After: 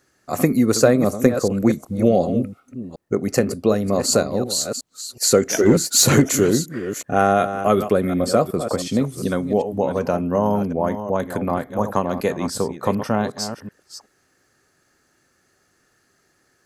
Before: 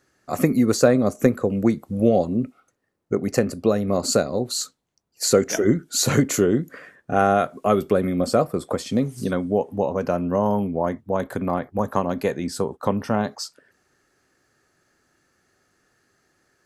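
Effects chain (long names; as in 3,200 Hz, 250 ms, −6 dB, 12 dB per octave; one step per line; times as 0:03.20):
delay that plays each chunk backwards 370 ms, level −10 dB
high-shelf EQ 5,300 Hz +4.5 dB
0:05.60–0:06.22: leveller curve on the samples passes 1
level +1.5 dB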